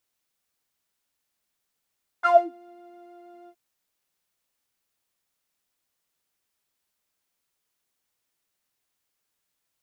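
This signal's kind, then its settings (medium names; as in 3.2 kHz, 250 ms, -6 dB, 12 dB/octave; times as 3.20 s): synth patch with pulse-width modulation F5, sub -10 dB, noise -24.5 dB, filter bandpass, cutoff 190 Hz, Q 11, filter envelope 3 oct, filter decay 0.29 s, filter sustain 10%, attack 36 ms, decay 0.21 s, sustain -19.5 dB, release 0.06 s, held 1.26 s, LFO 6.2 Hz, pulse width 46%, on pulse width 16%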